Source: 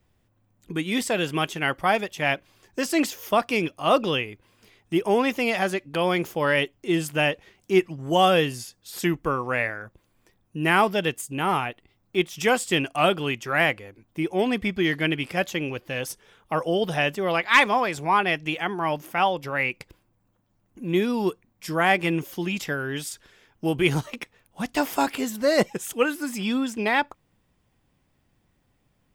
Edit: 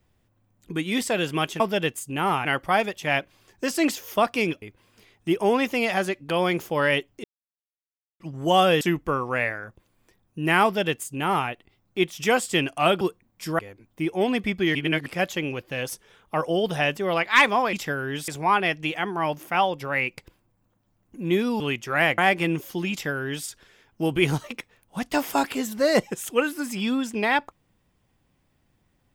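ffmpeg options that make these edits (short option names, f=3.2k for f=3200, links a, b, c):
-filter_complex "[0:a]asplit=15[a][b][c][d][e][f][g][h][i][j][k][l][m][n][o];[a]atrim=end=1.602[p];[b]atrim=start=10.818:end=11.672[q];[c]atrim=start=1.598:end=3.772[r];[d]atrim=start=4.268:end=6.89,asetpts=PTS-STARTPTS,afade=t=out:st=2.618:d=0.004:c=hsin[s];[e]atrim=start=6.89:end=7.85,asetpts=PTS-STARTPTS,volume=0[t];[f]atrim=start=7.85:end=8.462,asetpts=PTS-STARTPTS,afade=t=in:d=0.004:c=hsin[u];[g]atrim=start=8.988:end=13.192[v];[h]atrim=start=21.228:end=21.812[w];[i]atrim=start=13.768:end=14.932[x];[j]atrim=start=14.928:end=15.242,asetpts=PTS-STARTPTS,areverse[y];[k]atrim=start=15.238:end=17.912[z];[l]atrim=start=22.538:end=23.092[aa];[m]atrim=start=17.908:end=21.232[ab];[n]atrim=start=13.188:end=13.772[ac];[o]atrim=start=21.808[ad];[p][q]acrossfade=d=0.004:c1=hsin:c2=hsin[ae];[ae][r]acrossfade=d=0.004:c1=hsin:c2=hsin[af];[s][t][u]concat=n=3:v=0:a=1[ag];[af][ag]acrossfade=d=0.004:c1=hsin:c2=hsin[ah];[ah][v]acrossfade=d=0.004:c1=hsin:c2=hsin[ai];[ai][w]acrossfade=d=0.004:c1=hsin:c2=hsin[aj];[aj][x]acrossfade=d=0.004:c1=hsin:c2=hsin[ak];[ak][y]acrossfade=d=0.004:c1=hsin:c2=hsin[al];[al][z]acrossfade=d=0.004:c1=hsin:c2=hsin[am];[am][aa]acrossfade=d=0.004:c1=hsin:c2=hsin[an];[an][ab]acrossfade=d=0.004:c1=hsin:c2=hsin[ao];[ao][ac]acrossfade=d=0.004:c1=hsin:c2=hsin[ap];[ap][ad]acrossfade=d=0.004:c1=hsin:c2=hsin"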